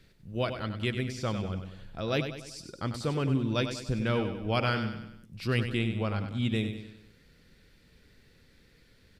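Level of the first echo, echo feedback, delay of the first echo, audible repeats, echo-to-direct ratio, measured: −8.5 dB, 48%, 97 ms, 5, −7.5 dB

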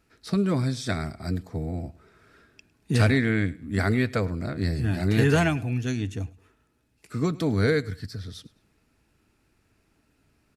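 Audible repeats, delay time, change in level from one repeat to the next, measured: 2, 105 ms, −10.0 dB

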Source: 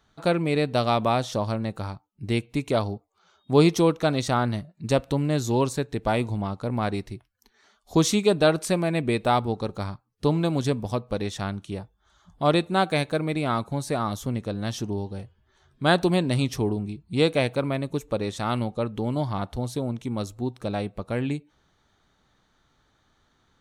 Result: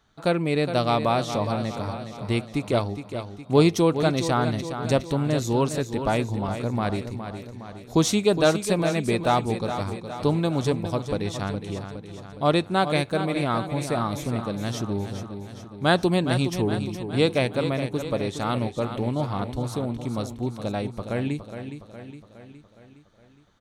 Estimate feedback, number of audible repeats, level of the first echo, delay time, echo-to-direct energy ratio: 55%, 5, −9.5 dB, 414 ms, −8.0 dB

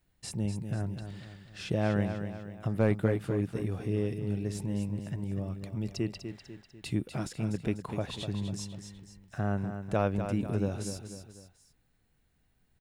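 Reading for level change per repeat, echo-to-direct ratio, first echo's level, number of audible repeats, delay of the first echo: −6.5 dB, −7.5 dB, −8.5 dB, 3, 247 ms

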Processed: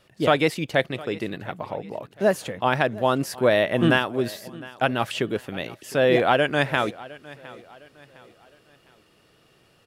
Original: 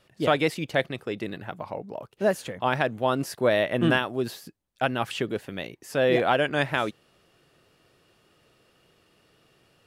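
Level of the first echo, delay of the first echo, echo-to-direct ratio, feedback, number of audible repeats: −20.0 dB, 709 ms, −19.5 dB, 39%, 2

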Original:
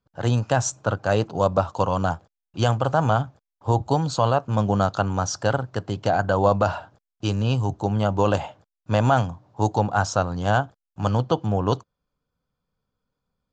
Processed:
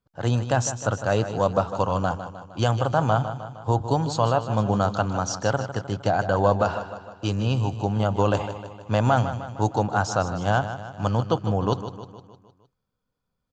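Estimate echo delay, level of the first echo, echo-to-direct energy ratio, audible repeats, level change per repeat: 154 ms, −11.0 dB, −9.5 dB, 5, −5.5 dB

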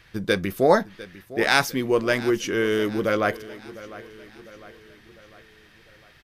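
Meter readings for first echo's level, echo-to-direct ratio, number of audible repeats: −17.5 dB, −16.0 dB, 3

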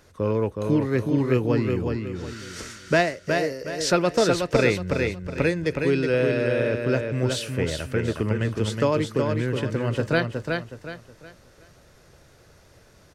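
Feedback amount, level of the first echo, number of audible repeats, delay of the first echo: 33%, −4.5 dB, 4, 368 ms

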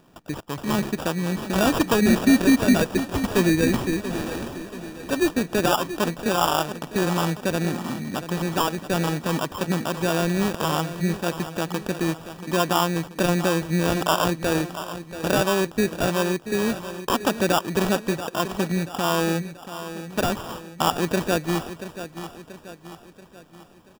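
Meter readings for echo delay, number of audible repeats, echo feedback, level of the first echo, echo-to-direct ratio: 683 ms, 4, 48%, −12.0 dB, −11.0 dB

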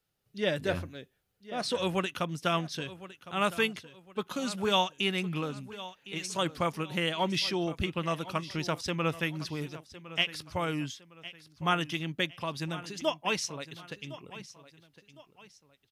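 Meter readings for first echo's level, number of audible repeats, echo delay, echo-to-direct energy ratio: −16.0 dB, 2, 1,059 ms, −15.5 dB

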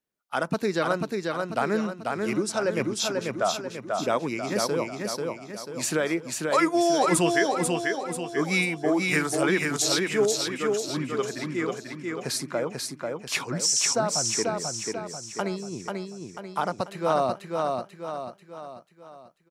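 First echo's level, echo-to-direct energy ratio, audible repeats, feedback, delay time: −3.5 dB, −2.5 dB, 5, 47%, 490 ms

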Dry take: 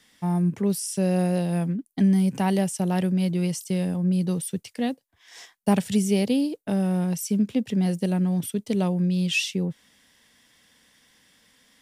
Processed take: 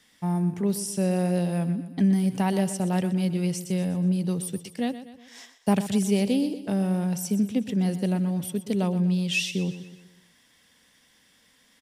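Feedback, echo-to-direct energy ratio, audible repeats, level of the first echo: 49%, −12.0 dB, 4, −13.0 dB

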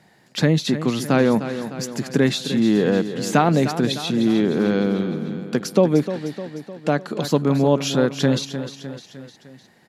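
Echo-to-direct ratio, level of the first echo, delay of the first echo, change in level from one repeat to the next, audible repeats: −9.5 dB, −11.0 dB, 304 ms, −5.0 dB, 4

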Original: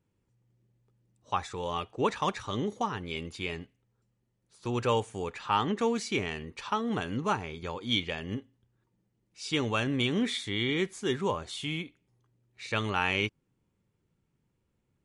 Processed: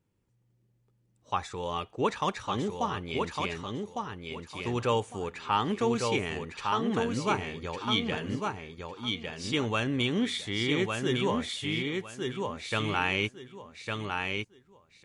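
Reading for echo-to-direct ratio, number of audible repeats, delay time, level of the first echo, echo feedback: −4.0 dB, 3, 1,155 ms, −4.0 dB, 23%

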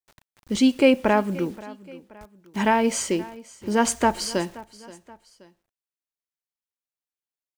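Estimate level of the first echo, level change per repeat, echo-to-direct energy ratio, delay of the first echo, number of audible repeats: −20.0 dB, −6.5 dB, −19.0 dB, 527 ms, 2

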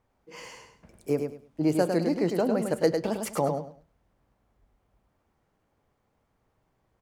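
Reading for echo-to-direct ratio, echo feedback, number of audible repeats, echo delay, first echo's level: −5.5 dB, 22%, 3, 103 ms, −5.5 dB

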